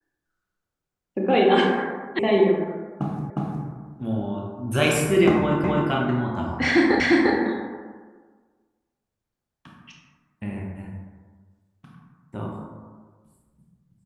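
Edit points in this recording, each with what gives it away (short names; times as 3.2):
2.19 sound cut off
3.3 repeat of the last 0.36 s
5.64 repeat of the last 0.26 s
7 repeat of the last 0.35 s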